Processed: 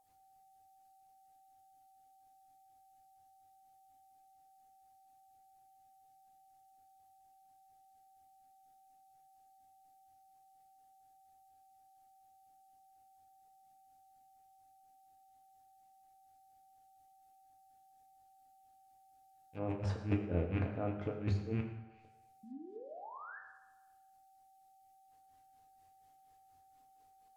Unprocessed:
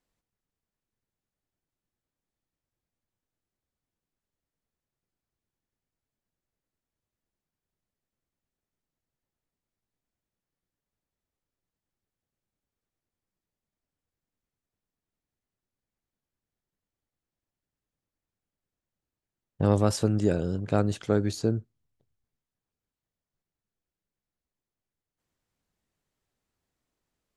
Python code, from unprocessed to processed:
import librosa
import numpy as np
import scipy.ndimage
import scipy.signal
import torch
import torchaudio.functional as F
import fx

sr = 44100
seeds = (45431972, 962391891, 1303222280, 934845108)

y = fx.rattle_buzz(x, sr, strikes_db=-30.0, level_db=-25.0)
y = fx.hum_notches(y, sr, base_hz=50, count=4)
y = fx.over_compress(y, sr, threshold_db=-32.0, ratio=-1.0)
y = fx.granulator(y, sr, seeds[0], grain_ms=247.0, per_s=4.2, spray_ms=100.0, spread_st=0)
y = fx.dmg_noise_colour(y, sr, seeds[1], colour='violet', level_db=-76.0)
y = fx.spec_paint(y, sr, seeds[2], shape='rise', start_s=22.43, length_s=0.96, low_hz=210.0, high_hz=1800.0, level_db=-50.0)
y = y + 10.0 ** (-64.0 / 20.0) * np.sin(2.0 * np.pi * 770.0 * np.arange(len(y)) / sr)
y = fx.rev_fdn(y, sr, rt60_s=1.1, lf_ratio=0.8, hf_ratio=0.75, size_ms=66.0, drr_db=1.5)
y = fx.env_lowpass_down(y, sr, base_hz=1300.0, full_db=-40.5)
y = y * librosa.db_to_amplitude(-1.0)